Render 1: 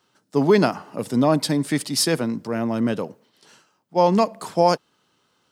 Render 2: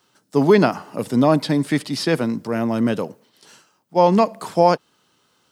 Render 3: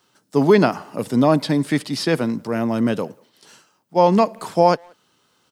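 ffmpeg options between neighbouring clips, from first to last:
-filter_complex "[0:a]acrossover=split=4000[a][b];[b]acompressor=threshold=-45dB:ratio=4:attack=1:release=60[c];[a][c]amix=inputs=2:normalize=0,highshelf=f=6.6k:g=6,volume=2.5dB"
-filter_complex "[0:a]asplit=2[a][b];[b]adelay=180,highpass=300,lowpass=3.4k,asoftclip=type=hard:threshold=-11dB,volume=-29dB[c];[a][c]amix=inputs=2:normalize=0"

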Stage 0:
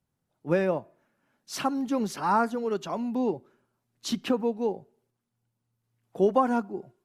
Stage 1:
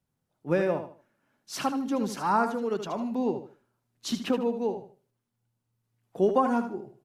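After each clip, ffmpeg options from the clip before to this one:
-af "aecho=1:1:76|152|228:0.355|0.0993|0.0278,volume=-1dB"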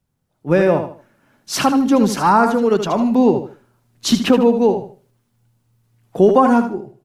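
-filter_complex "[0:a]lowshelf=f=100:g=8,dynaudnorm=f=170:g=7:m=9dB,asplit=2[a][b];[b]alimiter=limit=-10.5dB:level=0:latency=1:release=36,volume=3dB[c];[a][c]amix=inputs=2:normalize=0,volume=-2dB"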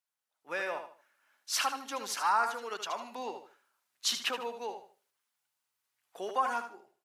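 -af "highpass=1.2k,volume=-8.5dB"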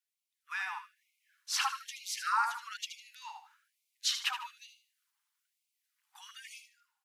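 -filter_complex "[0:a]acrossover=split=300|7300[a][b][c];[c]alimiter=level_in=11.5dB:limit=-24dB:level=0:latency=1:release=197,volume=-11.5dB[d];[a][b][d]amix=inputs=3:normalize=0,afftfilt=real='re*gte(b*sr/1024,730*pow(2100/730,0.5+0.5*sin(2*PI*1.1*pts/sr)))':imag='im*gte(b*sr/1024,730*pow(2100/730,0.5+0.5*sin(2*PI*1.1*pts/sr)))':win_size=1024:overlap=0.75"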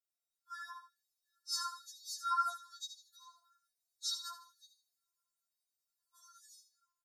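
-af "asuperstop=centerf=2400:order=20:qfactor=1.3,aecho=1:1:7.4:0.77,afftfilt=real='re*4*eq(mod(b,16),0)':imag='im*4*eq(mod(b,16),0)':win_size=2048:overlap=0.75,volume=-4.5dB"

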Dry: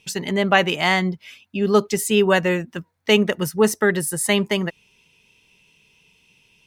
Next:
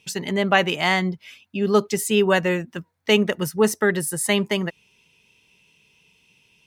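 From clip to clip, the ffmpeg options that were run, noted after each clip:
-af "highpass=49,volume=-1.5dB"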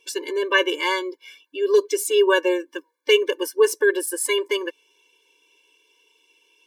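-af "afftfilt=real='re*eq(mod(floor(b*sr/1024/300),2),1)':imag='im*eq(mod(floor(b*sr/1024/300),2),1)':win_size=1024:overlap=0.75,volume=3dB"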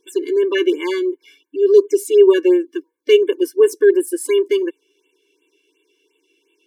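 -af "lowshelf=f=470:t=q:w=3:g=8,afftfilt=real='re*(1-between(b*sr/1024,670*pow(5300/670,0.5+0.5*sin(2*PI*2.8*pts/sr))/1.41,670*pow(5300/670,0.5+0.5*sin(2*PI*2.8*pts/sr))*1.41))':imag='im*(1-between(b*sr/1024,670*pow(5300/670,0.5+0.5*sin(2*PI*2.8*pts/sr))/1.41,670*pow(5300/670,0.5+0.5*sin(2*PI*2.8*pts/sr))*1.41))':win_size=1024:overlap=0.75,volume=-3.5dB"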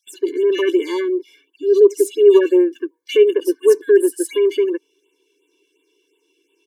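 -filter_complex "[0:a]acrossover=split=2300[a][b];[a]adelay=70[c];[c][b]amix=inputs=2:normalize=0"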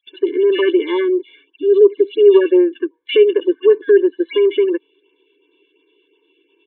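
-filter_complex "[0:a]aresample=8000,aresample=44100,asplit=2[a][b];[b]acompressor=threshold=-20dB:ratio=6,volume=0dB[c];[a][c]amix=inputs=2:normalize=0,volume=-1dB"

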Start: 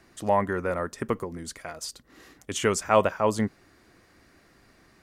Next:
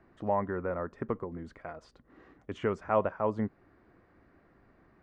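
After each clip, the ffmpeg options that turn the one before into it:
-filter_complex "[0:a]lowpass=1.4k,asplit=2[a][b];[b]acompressor=threshold=-31dB:ratio=6,volume=-2.5dB[c];[a][c]amix=inputs=2:normalize=0,volume=-7.5dB"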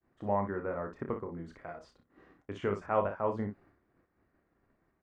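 -af "aecho=1:1:30|59:0.447|0.355,agate=range=-33dB:threshold=-53dB:ratio=3:detection=peak,volume=-3dB"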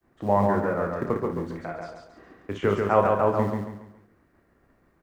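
-filter_complex "[0:a]acrossover=split=170[a][b];[a]acrusher=bits=5:mode=log:mix=0:aa=0.000001[c];[c][b]amix=inputs=2:normalize=0,aecho=1:1:139|278|417|556|695:0.668|0.247|0.0915|0.0339|0.0125,volume=8.5dB"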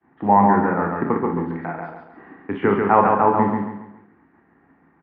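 -filter_complex "[0:a]highpass=110,equalizer=f=120:t=q:w=4:g=-5,equalizer=f=170:t=q:w=4:g=5,equalizer=f=270:t=q:w=4:g=6,equalizer=f=580:t=q:w=4:g=-9,equalizer=f=850:t=q:w=4:g=10,equalizer=f=1.8k:t=q:w=4:g=4,lowpass=f=2.5k:w=0.5412,lowpass=f=2.5k:w=1.3066,asplit=2[a][b];[b]adelay=44,volume=-10.5dB[c];[a][c]amix=inputs=2:normalize=0,volume=4.5dB"

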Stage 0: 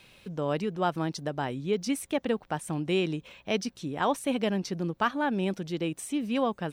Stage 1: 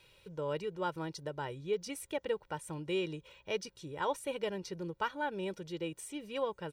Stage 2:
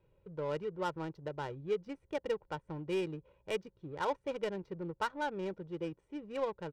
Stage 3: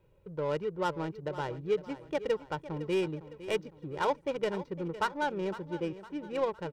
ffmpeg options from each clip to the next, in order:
-af "aecho=1:1:2.1:0.76,volume=-9dB"
-af "adynamicsmooth=sensitivity=7.5:basefreq=670"
-af "aecho=1:1:508|1016|1524|2032:0.188|0.0829|0.0365|0.016,volume=4.5dB"

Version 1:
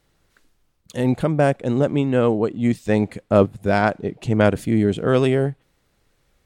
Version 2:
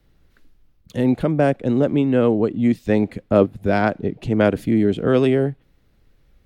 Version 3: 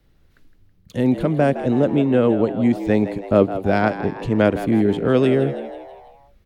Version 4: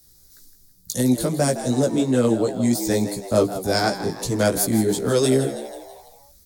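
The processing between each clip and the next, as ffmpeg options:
-filter_complex "[0:a]lowshelf=f=110:g=11.5,acrossover=split=240|510|3000[a][b][c][d];[a]acompressor=threshold=-26dB:ratio=6[e];[e][b][c][d]amix=inputs=4:normalize=0,equalizer=f=250:t=o:w=1:g=4,equalizer=f=1k:t=o:w=1:g=-3,equalizer=f=8k:t=o:w=1:g=-9"
-filter_complex "[0:a]asplit=6[a][b][c][d][e][f];[b]adelay=162,afreqshift=86,volume=-12dB[g];[c]adelay=324,afreqshift=172,volume=-17.7dB[h];[d]adelay=486,afreqshift=258,volume=-23.4dB[i];[e]adelay=648,afreqshift=344,volume=-29dB[j];[f]adelay=810,afreqshift=430,volume=-34.7dB[k];[a][g][h][i][j][k]amix=inputs=6:normalize=0"
-filter_complex "[0:a]flanger=delay=15:depth=2.9:speed=2.8,acrossover=split=190|590[a][b][c];[c]aexciter=amount=10.4:drive=9.3:freq=4.4k[d];[a][b][d]amix=inputs=3:normalize=0"

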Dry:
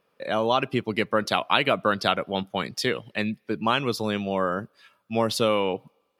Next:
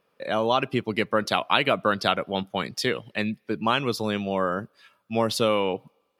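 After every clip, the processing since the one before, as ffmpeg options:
-af anull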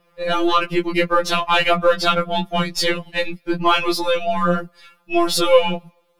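-filter_complex "[0:a]aeval=exprs='if(lt(val(0),0),0.708*val(0),val(0))':c=same,asplit=2[a][b];[b]alimiter=limit=-16.5dB:level=0:latency=1:release=69,volume=1dB[c];[a][c]amix=inputs=2:normalize=0,afftfilt=real='re*2.83*eq(mod(b,8),0)':imag='im*2.83*eq(mod(b,8),0)':win_size=2048:overlap=0.75,volume=6dB"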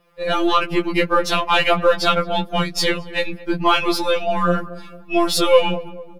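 -filter_complex "[0:a]asplit=2[a][b];[b]adelay=223,lowpass=f=1.1k:p=1,volume=-16dB,asplit=2[c][d];[d]adelay=223,lowpass=f=1.1k:p=1,volume=0.52,asplit=2[e][f];[f]adelay=223,lowpass=f=1.1k:p=1,volume=0.52,asplit=2[g][h];[h]adelay=223,lowpass=f=1.1k:p=1,volume=0.52,asplit=2[i][j];[j]adelay=223,lowpass=f=1.1k:p=1,volume=0.52[k];[a][c][e][g][i][k]amix=inputs=6:normalize=0"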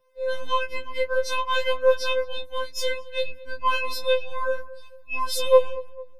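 -af "afftfilt=real='re*2.45*eq(mod(b,6),0)':imag='im*2.45*eq(mod(b,6),0)':win_size=2048:overlap=0.75,volume=-7dB"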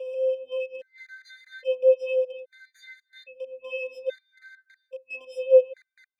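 -filter_complex "[0:a]aeval=exprs='val(0)+0.5*0.0668*sgn(val(0))':c=same,asplit=3[a][b][c];[a]bandpass=f=530:t=q:w=8,volume=0dB[d];[b]bandpass=f=1.84k:t=q:w=8,volume=-6dB[e];[c]bandpass=f=2.48k:t=q:w=8,volume=-9dB[f];[d][e][f]amix=inputs=3:normalize=0,afftfilt=real='re*gt(sin(2*PI*0.61*pts/sr)*(1-2*mod(floor(b*sr/1024/1200),2)),0)':imag='im*gt(sin(2*PI*0.61*pts/sr)*(1-2*mod(floor(b*sr/1024/1200),2)),0)':win_size=1024:overlap=0.75"

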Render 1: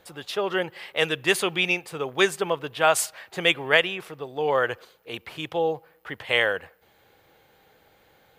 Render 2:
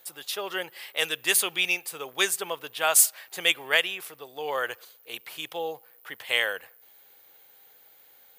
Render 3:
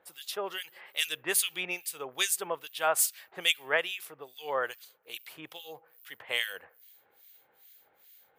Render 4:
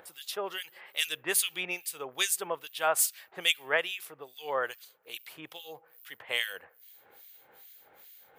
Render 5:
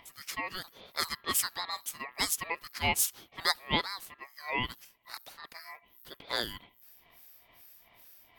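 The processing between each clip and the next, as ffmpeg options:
-af "aemphasis=mode=production:type=riaa,volume=-5.5dB"
-filter_complex "[0:a]acrossover=split=2000[a][b];[a]aeval=exprs='val(0)*(1-1/2+1/2*cos(2*PI*2.4*n/s))':c=same[c];[b]aeval=exprs='val(0)*(1-1/2-1/2*cos(2*PI*2.4*n/s))':c=same[d];[c][d]amix=inputs=2:normalize=0"
-af "acompressor=mode=upward:threshold=-47dB:ratio=2.5"
-af "aeval=exprs='val(0)*sin(2*PI*1500*n/s)':c=same,volume=1dB"

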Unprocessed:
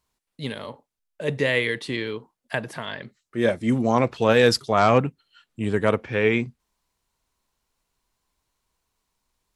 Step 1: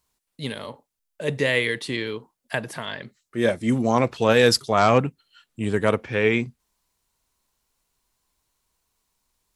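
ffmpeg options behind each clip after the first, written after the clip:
-af "highshelf=f=5.7k:g=7"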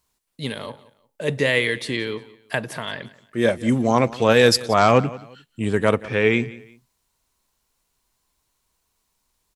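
-af "aecho=1:1:177|354:0.106|0.0318,volume=2dB"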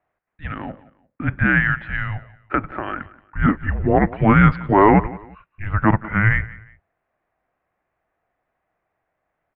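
-af "tiltshelf=f=650:g=-3,highpass=f=250:t=q:w=0.5412,highpass=f=250:t=q:w=1.307,lowpass=f=2.3k:t=q:w=0.5176,lowpass=f=2.3k:t=q:w=0.7071,lowpass=f=2.3k:t=q:w=1.932,afreqshift=-320,volume=3.5dB"

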